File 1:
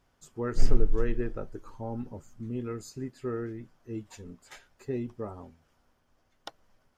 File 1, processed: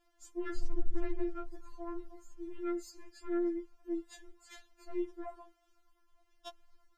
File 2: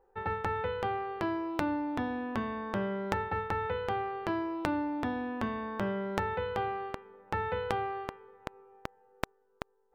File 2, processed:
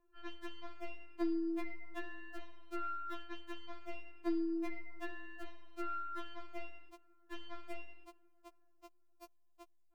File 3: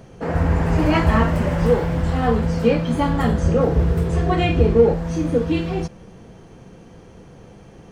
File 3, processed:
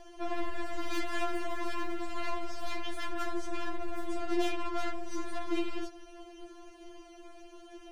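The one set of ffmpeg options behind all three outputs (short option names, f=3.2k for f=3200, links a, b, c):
-af "aeval=exprs='(tanh(25.1*val(0)+0.35)-tanh(0.35))/25.1':c=same,equalizer=f=130:w=1.4:g=-6,afftfilt=real='re*4*eq(mod(b,16),0)':imag='im*4*eq(mod(b,16),0)':win_size=2048:overlap=0.75"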